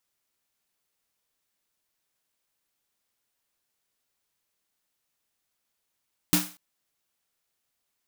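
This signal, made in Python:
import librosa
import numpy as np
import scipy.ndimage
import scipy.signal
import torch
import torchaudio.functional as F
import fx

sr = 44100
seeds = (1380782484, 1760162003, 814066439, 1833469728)

y = fx.drum_snare(sr, seeds[0], length_s=0.24, hz=180.0, second_hz=300.0, noise_db=0.5, noise_from_hz=550.0, decay_s=0.28, noise_decay_s=0.37)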